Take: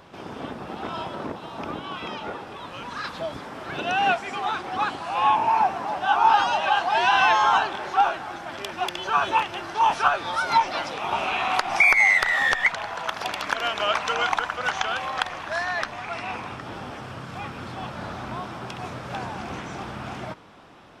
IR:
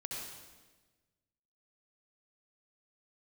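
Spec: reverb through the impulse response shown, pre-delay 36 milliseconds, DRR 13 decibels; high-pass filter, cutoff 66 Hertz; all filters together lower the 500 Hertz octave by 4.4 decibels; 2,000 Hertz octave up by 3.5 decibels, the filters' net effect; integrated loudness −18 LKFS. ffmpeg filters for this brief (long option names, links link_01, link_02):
-filter_complex "[0:a]highpass=66,equalizer=frequency=500:width_type=o:gain=-7,equalizer=frequency=2000:width_type=o:gain=4.5,asplit=2[link_01][link_02];[1:a]atrim=start_sample=2205,adelay=36[link_03];[link_02][link_03]afir=irnorm=-1:irlink=0,volume=-13dB[link_04];[link_01][link_04]amix=inputs=2:normalize=0,volume=3dB"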